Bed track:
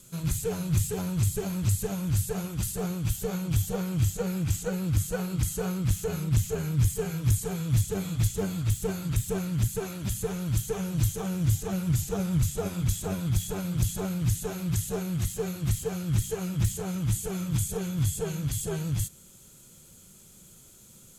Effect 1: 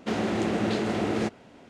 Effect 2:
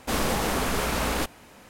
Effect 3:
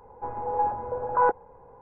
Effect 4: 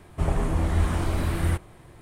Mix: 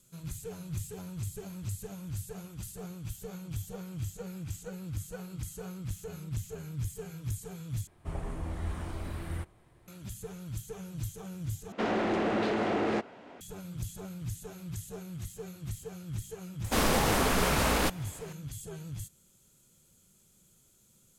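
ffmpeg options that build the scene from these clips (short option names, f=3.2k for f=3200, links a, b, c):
-filter_complex "[0:a]volume=-11.5dB[a];[1:a]asplit=2[b][c];[c]highpass=f=720:p=1,volume=17dB,asoftclip=type=tanh:threshold=-14.5dB[d];[b][d]amix=inputs=2:normalize=0,lowpass=f=1.3k:p=1,volume=-6dB[e];[a]asplit=3[f][g][h];[f]atrim=end=7.874[i];[4:a]atrim=end=2.01,asetpts=PTS-STARTPTS,volume=-12.5dB[j];[g]atrim=start=9.876:end=11.724[k];[e]atrim=end=1.69,asetpts=PTS-STARTPTS,volume=-4.5dB[l];[h]atrim=start=13.406[m];[2:a]atrim=end=1.69,asetpts=PTS-STARTPTS,volume=-0.5dB,afade=t=in:d=0.004:c=hsin,afade=t=out:st=1.686:d=0.004:c=hsin,adelay=16640[n];[i][j]acrossfade=d=0.004:c1=hsin:c2=hsin[o];[o][k]acrossfade=d=0.004:c1=hsin:c2=hsin[p];[p][l]acrossfade=d=0.004:c1=hsin:c2=hsin[q];[q][m]acrossfade=d=0.004:c1=hsin:c2=hsin[r];[r][n]amix=inputs=2:normalize=0"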